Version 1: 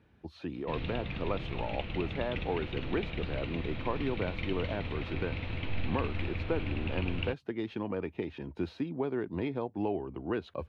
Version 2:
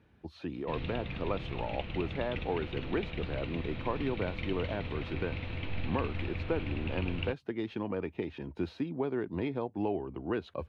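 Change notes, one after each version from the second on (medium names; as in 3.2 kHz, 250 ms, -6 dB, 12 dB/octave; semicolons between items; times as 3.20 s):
reverb: off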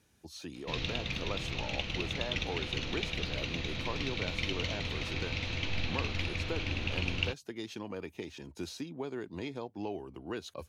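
speech -7.0 dB; master: remove distance through air 480 m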